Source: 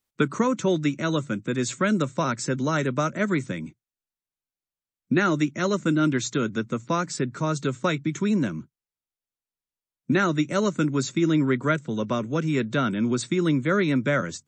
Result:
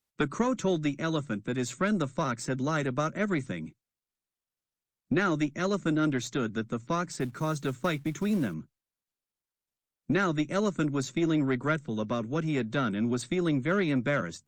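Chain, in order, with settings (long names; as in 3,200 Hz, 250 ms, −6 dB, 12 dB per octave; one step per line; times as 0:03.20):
one-sided soft clipper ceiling −15 dBFS
0:07.20–0:08.54: log-companded quantiser 6 bits
level −3.5 dB
Opus 48 kbit/s 48,000 Hz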